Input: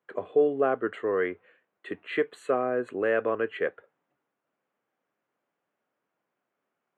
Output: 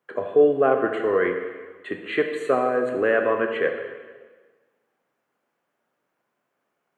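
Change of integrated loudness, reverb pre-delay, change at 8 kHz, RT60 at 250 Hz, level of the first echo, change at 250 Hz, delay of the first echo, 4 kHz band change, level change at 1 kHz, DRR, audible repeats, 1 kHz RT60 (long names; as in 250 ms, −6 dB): +5.5 dB, 6 ms, can't be measured, 1.5 s, no echo audible, +5.5 dB, no echo audible, +6.0 dB, +6.5 dB, 3.5 dB, no echo audible, 1.4 s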